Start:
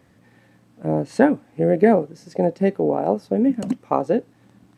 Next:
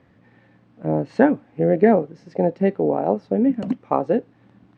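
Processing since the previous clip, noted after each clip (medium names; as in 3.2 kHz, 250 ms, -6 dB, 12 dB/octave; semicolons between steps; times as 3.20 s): low-pass 3.2 kHz 12 dB/octave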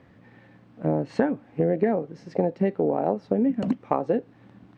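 compression 6:1, threshold -21 dBFS, peak gain reduction 11.5 dB; trim +2 dB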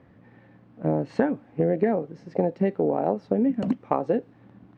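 tape noise reduction on one side only decoder only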